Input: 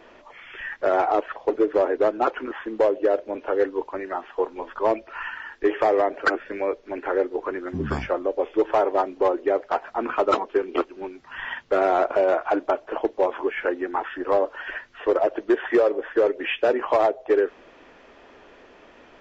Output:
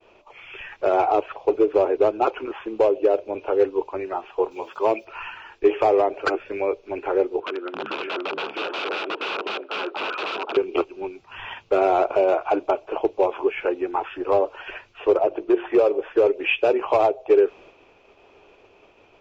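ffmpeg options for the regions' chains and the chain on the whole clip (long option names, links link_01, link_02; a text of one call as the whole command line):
ffmpeg -i in.wav -filter_complex "[0:a]asettb=1/sr,asplit=3[link_01][link_02][link_03];[link_01]atrim=end=4.514[link_04];[link_02]atrim=start=4.51:end=5.05,asetpts=PTS-STARTPTS,afade=type=in:duration=0.004:curve=qsin,afade=type=out:start_time=0.536:duration=0.004:curve=qsin,aemphasis=mode=production:type=75fm,acrossover=split=3500[link_05][link_06];[link_06]acompressor=threshold=-53dB:ratio=4:attack=1:release=60[link_07];[link_05][link_07]amix=inputs=2:normalize=0,highpass=130[link_08];[link_03]atrim=start=5.046[link_09];[link_04][link_08]acrossfade=duration=0.004:curve1=hsin:curve2=qsin[link_10];[link_10][link_09]acrossfade=duration=0.004:curve1=qsin:curve2=hsin,asettb=1/sr,asplit=3[link_11][link_12][link_13];[link_11]atrim=end=7.404[link_14];[link_12]atrim=start=7.4:end=10.57,asetpts=PTS-STARTPTS,afade=type=in:duration=0.004:curve=qsin,afade=type=out:start_time=3.166:duration=0.004:curve=qsin,aecho=1:1:524:0.596,atrim=end_sample=139797,aeval=exprs='(mod(11.2*val(0)+1,2)-1)/11.2':channel_layout=same,highpass=frequency=280:width=0.5412,highpass=frequency=280:width=1.3066,equalizer=frequency=760:width_type=q:width=4:gain=-4,equalizer=frequency=1400:width_type=q:width=4:gain=7,equalizer=frequency=2200:width_type=q:width=4:gain=-6,lowpass=frequency=3500:width=0.5412,lowpass=frequency=3500:width=1.3066[link_15];[link_13]atrim=start=10.566[link_16];[link_14][link_15]acrossfade=duration=0.004:curve1=hsin:curve2=qsin[link_17];[link_17][link_16]acrossfade=duration=0.004:curve1=qsin:curve2=hsin,asettb=1/sr,asplit=3[link_18][link_19][link_20];[link_18]atrim=end=15.174[link_21];[link_19]atrim=start=15.17:end=15.79,asetpts=PTS-STARTPTS,afade=type=in:duration=0.004:curve=qsin,afade=type=out:start_time=0.616:duration=0.004:curve=qsin,highshelf=frequency=2700:gain=-8,bandreject=frequency=50:width_type=h:width=6,bandreject=frequency=100:width_type=h:width=6,bandreject=frequency=150:width_type=h:width=6,bandreject=frequency=200:width_type=h:width=6,bandreject=frequency=250:width_type=h:width=6,bandreject=frequency=300:width_type=h:width=6,bandreject=frequency=350:width_type=h:width=6[link_22];[link_20]atrim=start=15.786[link_23];[link_21][link_22]acrossfade=duration=0.004:curve1=hsin:curve2=qsin[link_24];[link_24][link_23]acrossfade=duration=0.004:curve1=qsin:curve2=hsin,equalizer=frequency=100:width_type=o:width=0.33:gain=10,equalizer=frequency=250:width_type=o:width=0.33:gain=-7,equalizer=frequency=400:width_type=o:width=0.33:gain=5,equalizer=frequency=800:width_type=o:width=0.33:gain=3,equalizer=frequency=2500:width_type=o:width=0.33:gain=10,agate=range=-33dB:threshold=-42dB:ratio=3:detection=peak,equalizer=frequency=1800:width_type=o:width=0.48:gain=-11" out.wav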